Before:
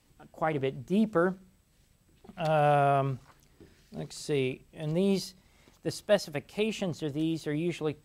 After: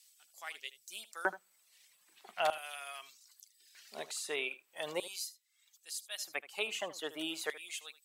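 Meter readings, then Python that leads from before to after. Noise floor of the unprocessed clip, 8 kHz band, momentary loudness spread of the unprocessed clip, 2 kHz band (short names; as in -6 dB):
-66 dBFS, +3.0 dB, 14 LU, -1.0 dB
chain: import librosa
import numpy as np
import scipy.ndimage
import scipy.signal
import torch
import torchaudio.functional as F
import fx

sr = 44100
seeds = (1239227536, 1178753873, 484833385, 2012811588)

p1 = fx.dereverb_blind(x, sr, rt60_s=0.97)
p2 = fx.filter_lfo_highpass(p1, sr, shape='square', hz=0.4, low_hz=910.0, high_hz=4500.0, q=0.75)
p3 = fx.low_shelf(p2, sr, hz=130.0, db=-9.5)
p4 = fx.rider(p3, sr, range_db=4, speed_s=0.5)
p5 = fx.dynamic_eq(p4, sr, hz=5000.0, q=1.9, threshold_db=-60.0, ratio=4.0, max_db=-7)
p6 = p5 + fx.echo_single(p5, sr, ms=77, db=-16.5, dry=0)
y = p6 * librosa.db_to_amplitude(6.0)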